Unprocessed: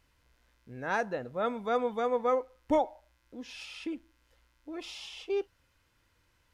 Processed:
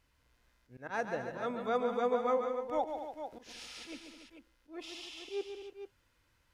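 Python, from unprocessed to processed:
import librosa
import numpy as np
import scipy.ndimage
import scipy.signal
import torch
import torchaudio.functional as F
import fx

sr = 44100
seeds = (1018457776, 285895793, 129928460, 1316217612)

y = fx.spec_clip(x, sr, under_db=16, at=(2.87, 3.94), fade=0.02)
y = fx.auto_swell(y, sr, attack_ms=113.0)
y = fx.echo_multitap(y, sr, ms=(138, 212, 288, 441), db=(-7.5, -11.5, -12.0, -9.5))
y = y * librosa.db_to_amplitude(-3.5)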